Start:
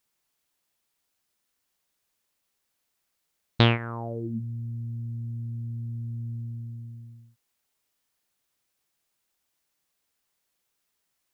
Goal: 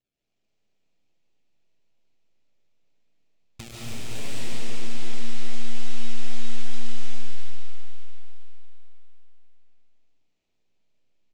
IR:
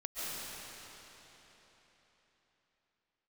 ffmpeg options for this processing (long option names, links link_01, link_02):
-filter_complex "[0:a]aeval=exprs='if(lt(val(0),0),0.447*val(0),val(0))':channel_layout=same,aresample=16000,acrusher=samples=13:mix=1:aa=0.000001:lfo=1:lforange=7.8:lforate=2.5,aresample=44100,acompressor=threshold=-43dB:ratio=3,aeval=exprs='0.0355*(cos(1*acos(clip(val(0)/0.0355,-1,1)))-cos(1*PI/2))+0.00501*(cos(3*acos(clip(val(0)/0.0355,-1,1)))-cos(3*PI/2))+0.00158*(cos(5*acos(clip(val(0)/0.0355,-1,1)))-cos(5*PI/2))+0.0141*(cos(8*acos(clip(val(0)/0.0355,-1,1)))-cos(8*PI/2))':channel_layout=same,highshelf=frequency=1900:width_type=q:width=1.5:gain=8.5,asplit=2[link_01][link_02];[link_02]adelay=334,lowpass=frequency=2000:poles=1,volume=-13dB,asplit=2[link_03][link_04];[link_04]adelay=334,lowpass=frequency=2000:poles=1,volume=0.45,asplit=2[link_05][link_06];[link_06]adelay=334,lowpass=frequency=2000:poles=1,volume=0.45,asplit=2[link_07][link_08];[link_08]adelay=334,lowpass=frequency=2000:poles=1,volume=0.45[link_09];[link_01][link_03][link_05][link_07][link_09]amix=inputs=5:normalize=0[link_10];[1:a]atrim=start_sample=2205[link_11];[link_10][link_11]afir=irnorm=-1:irlink=0"